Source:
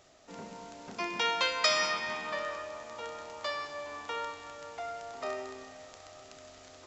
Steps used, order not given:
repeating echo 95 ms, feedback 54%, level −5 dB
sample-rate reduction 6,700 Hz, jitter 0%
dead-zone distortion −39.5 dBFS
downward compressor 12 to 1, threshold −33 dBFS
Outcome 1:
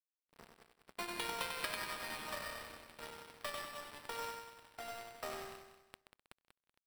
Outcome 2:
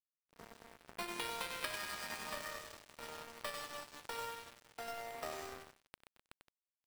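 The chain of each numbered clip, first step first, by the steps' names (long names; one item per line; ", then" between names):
downward compressor, then dead-zone distortion, then repeating echo, then sample-rate reduction
sample-rate reduction, then repeating echo, then downward compressor, then dead-zone distortion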